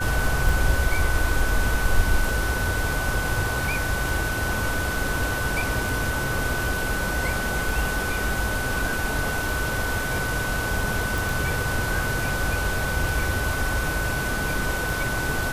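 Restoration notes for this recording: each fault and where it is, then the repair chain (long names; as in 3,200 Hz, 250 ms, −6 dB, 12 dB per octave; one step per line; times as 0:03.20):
scratch tick 33 1/3 rpm
whistle 1,500 Hz −28 dBFS
0:11.18: click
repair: click removal
notch filter 1,500 Hz, Q 30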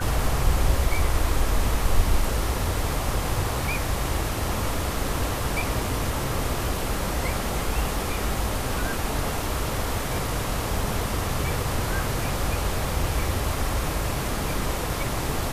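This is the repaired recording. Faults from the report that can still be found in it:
none of them is left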